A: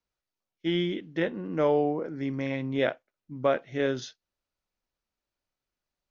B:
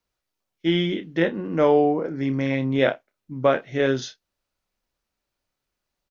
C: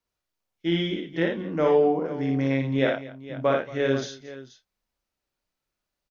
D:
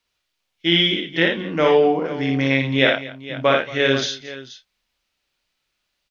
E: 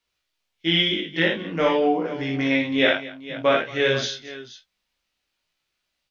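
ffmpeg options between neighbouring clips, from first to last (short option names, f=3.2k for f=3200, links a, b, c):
-filter_complex "[0:a]asplit=2[a][b];[b]adelay=30,volume=-10.5dB[c];[a][c]amix=inputs=2:normalize=0,volume=6dB"
-af "aecho=1:1:59|228|481:0.668|0.112|0.188,volume=-4.5dB"
-af "equalizer=f=3.1k:w=0.64:g=12.5,volume=3.5dB"
-af "flanger=delay=16.5:depth=2.7:speed=0.5"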